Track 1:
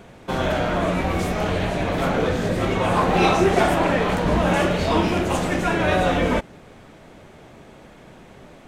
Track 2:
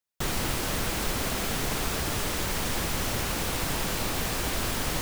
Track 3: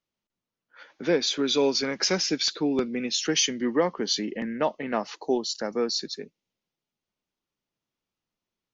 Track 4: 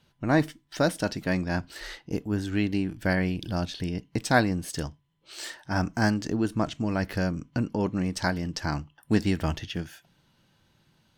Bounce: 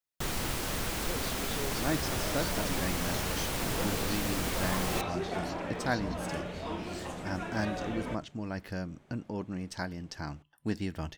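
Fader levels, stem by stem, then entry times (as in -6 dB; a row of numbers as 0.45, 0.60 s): -17.5, -4.5, -18.5, -9.5 dB; 1.75, 0.00, 0.00, 1.55 s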